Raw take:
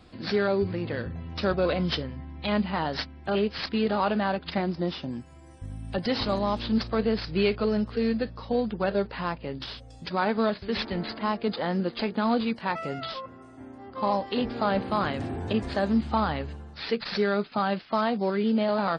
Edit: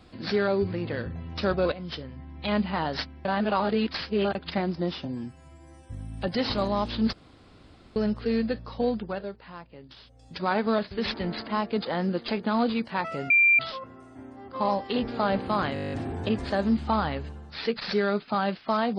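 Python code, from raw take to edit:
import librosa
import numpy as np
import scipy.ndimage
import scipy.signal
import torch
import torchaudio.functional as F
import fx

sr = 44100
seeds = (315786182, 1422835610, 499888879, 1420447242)

y = fx.edit(x, sr, fx.fade_in_from(start_s=1.72, length_s=0.8, floor_db=-14.0),
    fx.reverse_span(start_s=3.25, length_s=1.1),
    fx.stretch_span(start_s=5.05, length_s=0.58, factor=1.5),
    fx.room_tone_fill(start_s=6.84, length_s=0.83),
    fx.fade_down_up(start_s=8.65, length_s=1.49, db=-12.5, fade_s=0.49, curve='qua'),
    fx.insert_tone(at_s=13.01, length_s=0.29, hz=2370.0, db=-15.5),
    fx.stutter(start_s=15.16, slice_s=0.02, count=10), tone=tone)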